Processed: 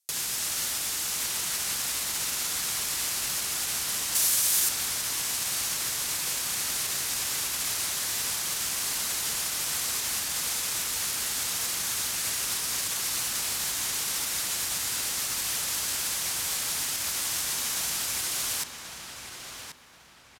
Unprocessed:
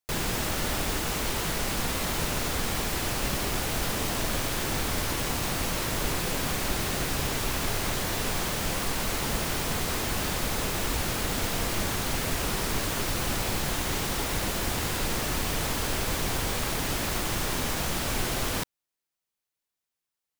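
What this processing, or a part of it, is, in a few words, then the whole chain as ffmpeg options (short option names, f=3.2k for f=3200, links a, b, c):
FM broadcast chain: -filter_complex "[0:a]highpass=62,lowpass=6.5k,dynaudnorm=f=950:g=3:m=11.5dB,acrossover=split=890|2100|7800[a][b][c][d];[a]acompressor=threshold=-40dB:ratio=4[e];[b]acompressor=threshold=-35dB:ratio=4[f];[c]acompressor=threshold=-39dB:ratio=4[g];[d]acompressor=threshold=-54dB:ratio=4[h];[e][f][g][h]amix=inputs=4:normalize=0,aemphasis=mode=production:type=75fm,alimiter=level_in=0.5dB:limit=-24dB:level=0:latency=1:release=123,volume=-0.5dB,asoftclip=type=hard:threshold=-26dB,lowpass=f=15k:w=0.5412,lowpass=f=15k:w=1.3066,aemphasis=mode=production:type=75fm,asettb=1/sr,asplit=3[i][j][k];[i]atrim=end=4.154[l];[j]atrim=start=4.15:end=4.69,asetpts=PTS-STARTPTS,afade=t=in:d=0.004:c=qsin,afade=t=out:st=0.536:d=0.004:c=qsin,aemphasis=mode=production:type=cd[m];[k]atrim=start=4.686[n];[l][m]acrossfade=d=0.004:c1=hsin:c2=qsin[o];[o][n]acrossfade=d=0.004:c1=qsin:c2=hsin,asplit=2[p][q];[q]adelay=1083,lowpass=f=3k:p=1,volume=-5dB,asplit=2[r][s];[s]adelay=1083,lowpass=f=3k:p=1,volume=0.34,asplit=2[t][u];[u]adelay=1083,lowpass=f=3k:p=1,volume=0.34,asplit=2[v][w];[w]adelay=1083,lowpass=f=3k:p=1,volume=0.34[x];[p][r][t][v][x]amix=inputs=5:normalize=0,volume=-4dB"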